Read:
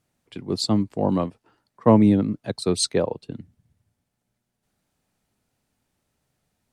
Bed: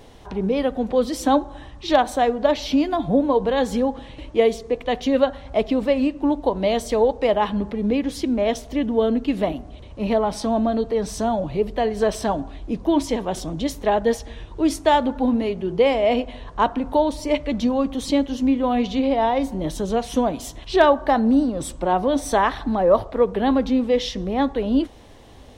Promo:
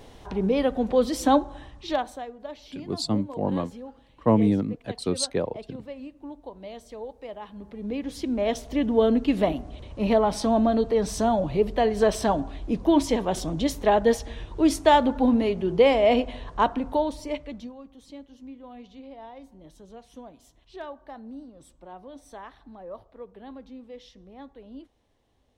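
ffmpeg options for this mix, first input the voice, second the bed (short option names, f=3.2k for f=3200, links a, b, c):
-filter_complex "[0:a]adelay=2400,volume=-4.5dB[a];[1:a]volume=17.5dB,afade=t=out:st=1.35:d=0.91:silence=0.125893,afade=t=in:st=7.54:d=1.5:silence=0.112202,afade=t=out:st=16.31:d=1.44:silence=0.0707946[b];[a][b]amix=inputs=2:normalize=0"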